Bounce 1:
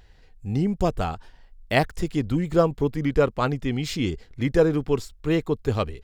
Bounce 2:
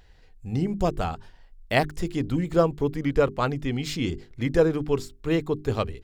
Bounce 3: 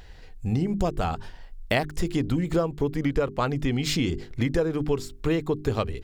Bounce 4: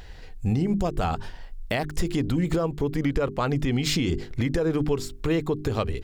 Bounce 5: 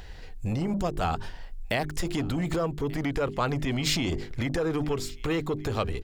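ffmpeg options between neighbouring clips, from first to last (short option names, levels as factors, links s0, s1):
-af "bandreject=f=50:t=h:w=6,bandreject=f=100:t=h:w=6,bandreject=f=150:t=h:w=6,bandreject=f=200:t=h:w=6,bandreject=f=250:t=h:w=6,bandreject=f=300:t=h:w=6,bandreject=f=350:t=h:w=6,bandreject=f=400:t=h:w=6,volume=0.891"
-af "acompressor=threshold=0.0316:ratio=6,volume=2.66"
-af "alimiter=limit=0.119:level=0:latency=1:release=88,volume=1.5"
-filter_complex "[0:a]acrossover=split=700[s0][s1];[s0]asoftclip=type=tanh:threshold=0.0596[s2];[s1]aecho=1:1:1187:0.0841[s3];[s2][s3]amix=inputs=2:normalize=0"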